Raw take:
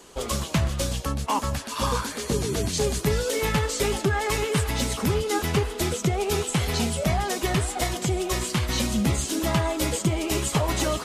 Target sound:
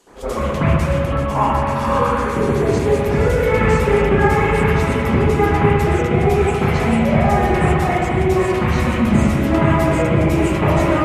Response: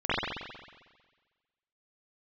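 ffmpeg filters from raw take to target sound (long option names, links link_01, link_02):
-filter_complex "[0:a]bandreject=frequency=60:width_type=h:width=6,bandreject=frequency=120:width_type=h:width=6,bandreject=frequency=180:width_type=h:width=6[link_01];[1:a]atrim=start_sample=2205,asetrate=29988,aresample=44100[link_02];[link_01][link_02]afir=irnorm=-1:irlink=0,volume=-7.5dB"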